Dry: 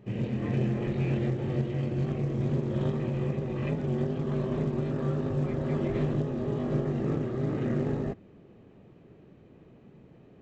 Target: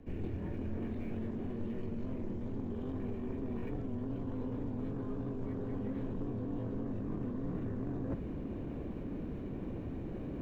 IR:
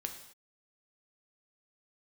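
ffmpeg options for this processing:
-filter_complex "[0:a]equalizer=frequency=460:width=0.46:gain=11.5,areverse,acompressor=threshold=-41dB:ratio=10,areverse,asoftclip=type=tanh:threshold=-35dB,afreqshift=-130,acrossover=split=360|2100[link_01][link_02][link_03];[link_03]acrusher=bits=3:mode=log:mix=0:aa=0.000001[link_04];[link_01][link_02][link_04]amix=inputs=3:normalize=0,volume=7dB"

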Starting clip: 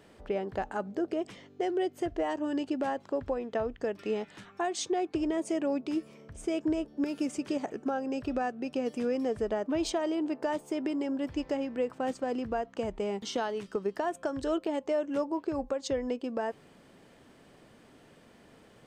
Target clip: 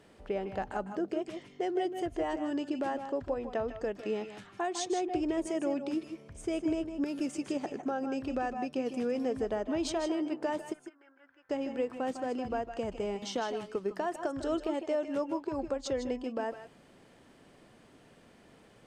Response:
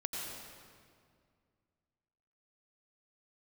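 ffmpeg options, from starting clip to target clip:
-filter_complex "[0:a]asplit=3[link_01][link_02][link_03];[link_01]afade=type=out:start_time=10.72:duration=0.02[link_04];[link_02]bandpass=frequency=1500:width_type=q:width=8.8:csg=0,afade=type=in:start_time=10.72:duration=0.02,afade=type=out:start_time=11.49:duration=0.02[link_05];[link_03]afade=type=in:start_time=11.49:duration=0.02[link_06];[link_04][link_05][link_06]amix=inputs=3:normalize=0[link_07];[1:a]atrim=start_sample=2205,atrim=end_sample=3969,asetrate=24255,aresample=44100[link_08];[link_07][link_08]afir=irnorm=-1:irlink=0,volume=-3dB"

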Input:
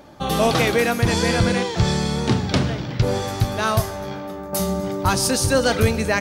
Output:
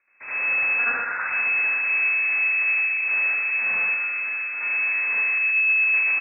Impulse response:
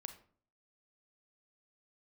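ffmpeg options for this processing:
-filter_complex "[0:a]aemphasis=mode=reproduction:type=75kf,afwtdn=0.0708,aeval=exprs='abs(val(0))':channel_layout=same,asettb=1/sr,asplit=3[link_01][link_02][link_03];[link_01]atrim=end=0.794[link_04];[link_02]atrim=start=0.79:end=1.21,asetpts=PTS-STARTPTS,afade=type=in:duration=0.004:curve=qsin,afade=type=out:start_time=0.416:duration=0.004:curve=qsin,highpass=frequency=1100:width_type=q:width=4.9[link_05];[link_03]atrim=start=1.206[link_06];[link_04][link_05]acrossfade=duration=0.004:curve1=hsin:curve2=qsin[link_07];[link_07][link_06]acrossfade=duration=0.004:curve1=qsin:curve2=hsin,asettb=1/sr,asplit=3[link_08][link_09][link_10];[link_08]atrim=end=5.304[link_11];[link_09]atrim=start=5.3:end=5.86,asetpts=PTS-STARTPTS,afade=type=in:duration=0.004:curve=qsin,afade=type=out:start_time=0.556:duration=0.004:curve=qsin,tiltshelf=frequency=1500:gain=6.5[link_12];[link_10]atrim=start=5.856[link_13];[link_11][link_12]acrossfade=duration=0.004:curve1=hsin:curve2=qsin[link_14];[link_14][link_13]acrossfade=duration=0.004:curve1=qsin:curve2=hsin,asoftclip=type=tanh:threshold=-24dB,aecho=1:1:122|523:0.562|0.224,asplit=2[link_15][link_16];[1:a]atrim=start_sample=2205,adelay=76[link_17];[link_16][link_17]afir=irnorm=-1:irlink=0,volume=10.5dB[link_18];[link_15][link_18]amix=inputs=2:normalize=0,lowpass=frequency=2200:width_type=q:width=0.5098,lowpass=frequency=2200:width_type=q:width=0.6013,lowpass=frequency=2200:width_type=q:width=0.9,lowpass=frequency=2200:width_type=q:width=2.563,afreqshift=-2600,volume=-6.5dB"

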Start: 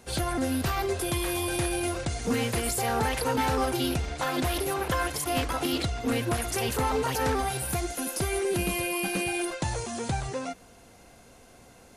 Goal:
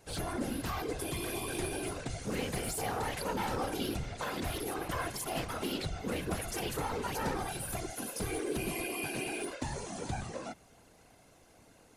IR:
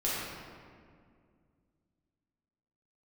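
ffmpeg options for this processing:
-af "aeval=exprs='0.106*(cos(1*acos(clip(val(0)/0.106,-1,1)))-cos(1*PI/2))+0.00531*(cos(5*acos(clip(val(0)/0.106,-1,1)))-cos(5*PI/2))+0.00266*(cos(7*acos(clip(val(0)/0.106,-1,1)))-cos(7*PI/2))':channel_layout=same,afftfilt=real='hypot(re,im)*cos(2*PI*random(0))':imag='hypot(re,im)*sin(2*PI*random(1))':win_size=512:overlap=0.75,volume=-2dB"

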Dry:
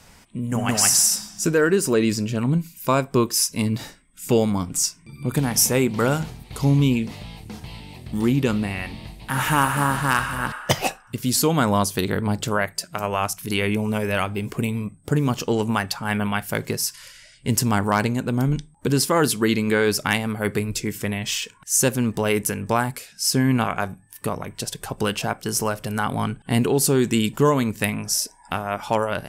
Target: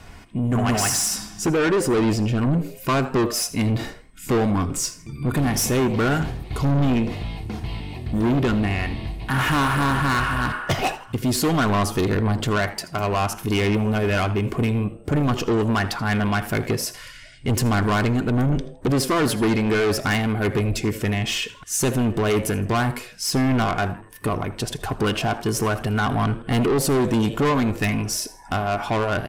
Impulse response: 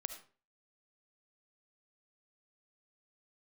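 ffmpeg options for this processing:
-filter_complex "[0:a]bass=frequency=250:gain=4,treble=frequency=4000:gain=-10,aecho=1:1:2.8:0.4,asplit=4[link_01][link_02][link_03][link_04];[link_02]adelay=81,afreqshift=120,volume=-20dB[link_05];[link_03]adelay=162,afreqshift=240,volume=-28.9dB[link_06];[link_04]adelay=243,afreqshift=360,volume=-37.7dB[link_07];[link_01][link_05][link_06][link_07]amix=inputs=4:normalize=0,asoftclip=type=tanh:threshold=-22dB,asplit=2[link_08][link_09];[1:a]atrim=start_sample=2205[link_10];[link_09][link_10]afir=irnorm=-1:irlink=0,volume=-7dB[link_11];[link_08][link_11]amix=inputs=2:normalize=0,volume=3dB"

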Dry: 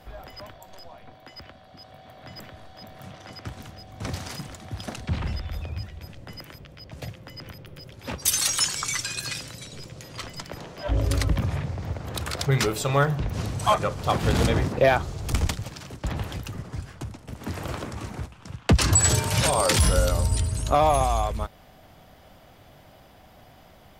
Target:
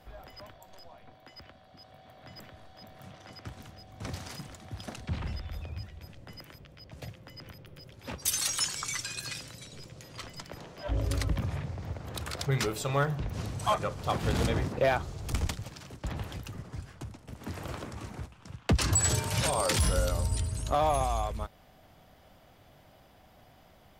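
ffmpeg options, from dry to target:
ffmpeg -i in.wav -af "asoftclip=type=hard:threshold=-11.5dB,volume=-6.5dB" out.wav

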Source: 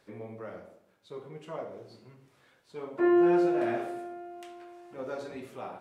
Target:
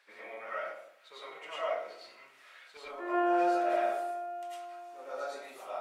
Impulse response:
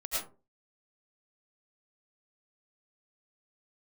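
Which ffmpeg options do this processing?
-filter_complex "[0:a]highpass=750,asetnsamples=nb_out_samples=441:pad=0,asendcmd='2.77 equalizer g -4.5',equalizer=frequency=2200:width=0.79:gain=9.5[link_01];[1:a]atrim=start_sample=2205[link_02];[link_01][link_02]afir=irnorm=-1:irlink=0"

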